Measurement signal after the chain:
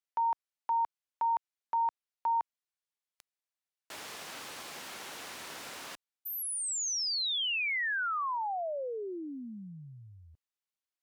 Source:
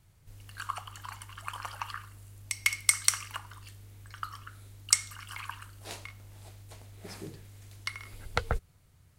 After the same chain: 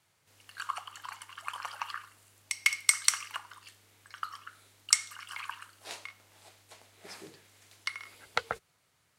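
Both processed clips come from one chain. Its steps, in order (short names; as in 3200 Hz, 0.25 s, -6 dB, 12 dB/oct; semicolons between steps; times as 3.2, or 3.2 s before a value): weighting filter A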